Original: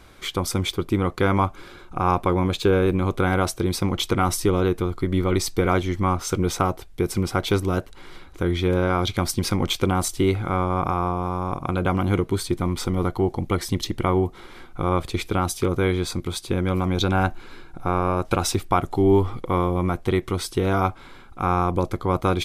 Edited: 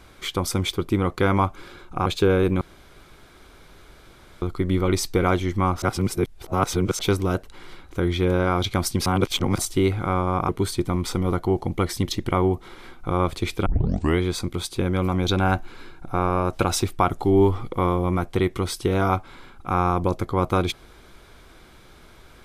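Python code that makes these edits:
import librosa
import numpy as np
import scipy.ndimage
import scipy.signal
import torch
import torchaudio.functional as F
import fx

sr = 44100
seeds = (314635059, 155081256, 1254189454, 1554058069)

y = fx.edit(x, sr, fx.cut(start_s=2.06, length_s=0.43),
    fx.room_tone_fill(start_s=3.04, length_s=1.81),
    fx.reverse_span(start_s=6.25, length_s=1.17),
    fx.reverse_span(start_s=9.49, length_s=0.52),
    fx.cut(start_s=10.92, length_s=1.29),
    fx.tape_start(start_s=15.38, length_s=0.53), tone=tone)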